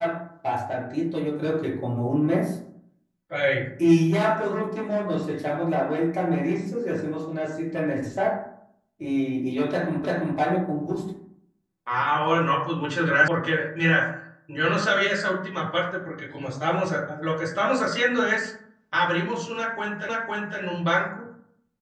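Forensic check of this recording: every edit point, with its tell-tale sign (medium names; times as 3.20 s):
10.04 s: repeat of the last 0.34 s
13.28 s: sound stops dead
20.09 s: repeat of the last 0.51 s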